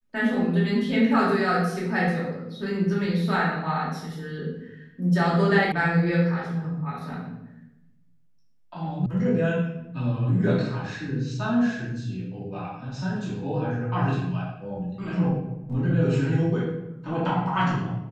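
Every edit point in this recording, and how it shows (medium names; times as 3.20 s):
5.72 s: sound stops dead
9.06 s: sound stops dead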